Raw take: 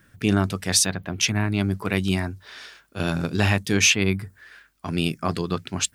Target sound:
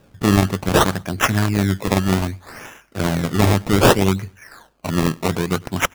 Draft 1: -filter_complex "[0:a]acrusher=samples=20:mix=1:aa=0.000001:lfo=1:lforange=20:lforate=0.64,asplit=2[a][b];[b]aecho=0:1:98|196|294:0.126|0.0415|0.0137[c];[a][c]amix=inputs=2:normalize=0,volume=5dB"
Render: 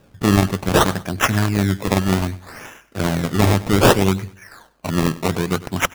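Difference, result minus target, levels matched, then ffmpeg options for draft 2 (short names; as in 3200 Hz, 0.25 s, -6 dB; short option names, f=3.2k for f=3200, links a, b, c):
echo-to-direct +7.5 dB
-filter_complex "[0:a]acrusher=samples=20:mix=1:aa=0.000001:lfo=1:lforange=20:lforate=0.64,asplit=2[a][b];[b]aecho=0:1:98|196:0.0531|0.0175[c];[a][c]amix=inputs=2:normalize=0,volume=5dB"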